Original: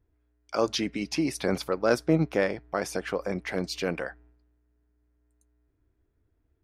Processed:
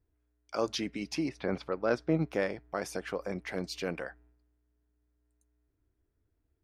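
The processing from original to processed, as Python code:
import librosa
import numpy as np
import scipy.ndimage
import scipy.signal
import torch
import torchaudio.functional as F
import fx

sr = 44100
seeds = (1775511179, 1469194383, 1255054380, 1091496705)

y = fx.lowpass(x, sr, hz=fx.line((1.28, 2500.0), (2.25, 4900.0)), slope=12, at=(1.28, 2.25), fade=0.02)
y = y * librosa.db_to_amplitude(-5.5)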